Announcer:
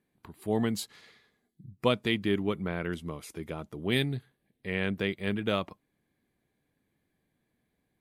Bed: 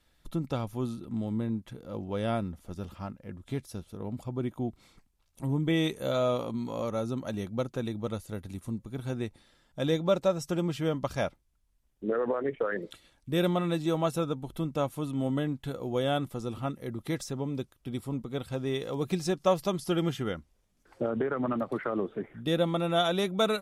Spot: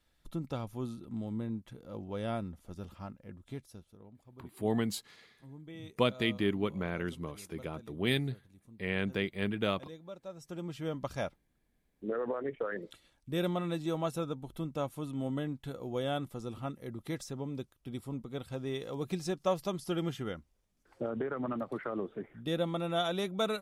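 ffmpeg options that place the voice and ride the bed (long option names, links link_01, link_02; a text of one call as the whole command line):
ffmpeg -i stem1.wav -i stem2.wav -filter_complex "[0:a]adelay=4150,volume=-2.5dB[link_01];[1:a]volume=10dB,afade=type=out:start_time=3.21:duration=0.93:silence=0.16788,afade=type=in:start_time=10.24:duration=0.83:silence=0.16788[link_02];[link_01][link_02]amix=inputs=2:normalize=0" out.wav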